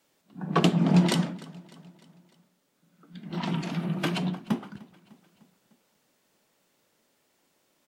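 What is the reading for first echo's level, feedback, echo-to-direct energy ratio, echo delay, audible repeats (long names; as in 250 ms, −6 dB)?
−22.0 dB, 55%, −20.5 dB, 301 ms, 3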